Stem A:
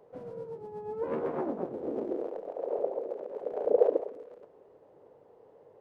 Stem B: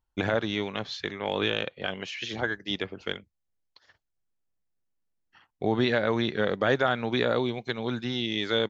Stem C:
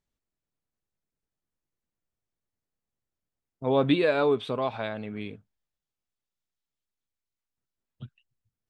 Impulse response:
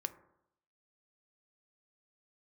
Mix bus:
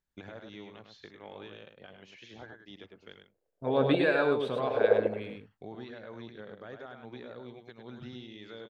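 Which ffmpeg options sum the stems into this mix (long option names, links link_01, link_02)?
-filter_complex "[0:a]adelay=1100,volume=-0.5dB[link_01];[1:a]alimiter=limit=-20dB:level=0:latency=1:release=373,adynamicequalizer=threshold=0.00355:dfrequency=1700:dqfactor=0.7:tfrequency=1700:tqfactor=0.7:attack=5:release=100:ratio=0.375:range=2.5:mode=cutabove:tftype=highshelf,volume=-13dB,asplit=2[link_02][link_03];[link_03]volume=-6.5dB[link_04];[2:a]equalizer=frequency=1600:width=4.4:gain=9,volume=-5dB,asplit=3[link_05][link_06][link_07];[link_06]volume=-5dB[link_08];[link_07]apad=whole_len=304465[link_09];[link_01][link_09]sidechaingate=range=-45dB:threshold=-45dB:ratio=16:detection=peak[link_10];[link_04][link_08]amix=inputs=2:normalize=0,aecho=0:1:103:1[link_11];[link_10][link_02][link_05][link_11]amix=inputs=4:normalize=0"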